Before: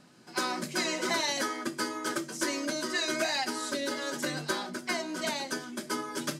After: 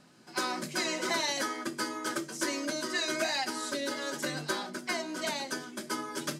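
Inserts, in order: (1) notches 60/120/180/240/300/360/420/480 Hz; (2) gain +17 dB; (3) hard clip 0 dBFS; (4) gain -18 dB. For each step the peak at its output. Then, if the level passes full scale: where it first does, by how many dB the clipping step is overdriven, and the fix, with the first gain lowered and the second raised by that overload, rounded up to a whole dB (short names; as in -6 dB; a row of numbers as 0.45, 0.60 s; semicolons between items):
-19.0, -2.0, -2.0, -20.0 dBFS; no overload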